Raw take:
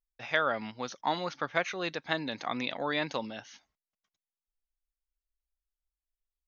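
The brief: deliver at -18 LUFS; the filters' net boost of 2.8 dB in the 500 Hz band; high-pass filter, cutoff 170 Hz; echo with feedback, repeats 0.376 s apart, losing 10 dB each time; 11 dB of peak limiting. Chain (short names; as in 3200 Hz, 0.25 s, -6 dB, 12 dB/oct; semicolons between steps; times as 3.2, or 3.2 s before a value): HPF 170 Hz; bell 500 Hz +3.5 dB; limiter -21.5 dBFS; feedback echo 0.376 s, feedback 32%, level -10 dB; gain +16.5 dB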